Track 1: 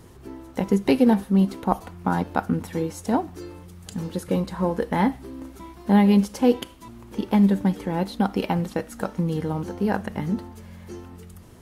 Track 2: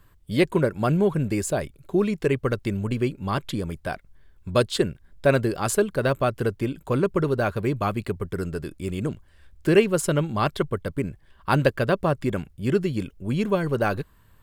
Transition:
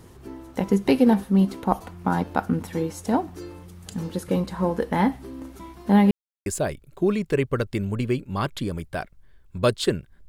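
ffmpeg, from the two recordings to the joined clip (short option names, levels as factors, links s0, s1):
-filter_complex "[0:a]apad=whole_dur=10.28,atrim=end=10.28,asplit=2[s0][s1];[s0]atrim=end=6.11,asetpts=PTS-STARTPTS,afade=t=out:st=6.106:d=0.004:c=hsin[s2];[s1]atrim=start=6.11:end=6.46,asetpts=PTS-STARTPTS,volume=0[s3];[1:a]atrim=start=1.38:end=5.2,asetpts=PTS-STARTPTS,afade=t=in:d=0.004:c=hsin[s4];[s2][s3][s4]concat=n=3:v=0:a=1"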